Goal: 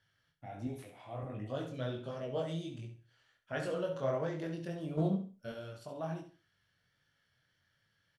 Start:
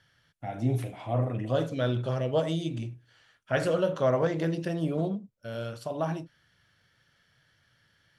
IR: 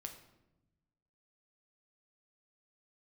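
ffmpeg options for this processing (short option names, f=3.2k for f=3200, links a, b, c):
-filter_complex "[0:a]asettb=1/sr,asplit=3[a][b][c];[a]atrim=end=0.674[d];[b]atrim=start=0.67:end=1.23,asetpts=PTS-STARTPTS,afade=t=in:d=0.004:c=qsin,afade=t=out:st=0.556:d=0.004:c=qsin,lowshelf=f=440:g=-7[e];[c]atrim=start=1.226[f];[d][e]acrossfade=d=0.004:c1=hsin:c2=qsin[g];[g][f]acrossfade=d=0.004:c1=qsin:c2=hsin,asettb=1/sr,asplit=3[h][i][j];[h]atrim=end=4.974[k];[i]atrim=start=4.97:end=5.52,asetpts=PTS-STARTPTS,afade=t=in:d=0.004:c=qsin,afade=t=out:st=0.546:d=0.004:c=qsin,acontrast=79[l];[j]atrim=start=5.516[m];[k][l]acrossfade=d=0.004:c1=hsin:c2=qsin[n];[n][m]acrossfade=d=0.004:c1=qsin:c2=hsin,flanger=delay=19.5:depth=4.1:speed=1.4,aecho=1:1:68|136|204:0.316|0.0854|0.0231,volume=-7dB"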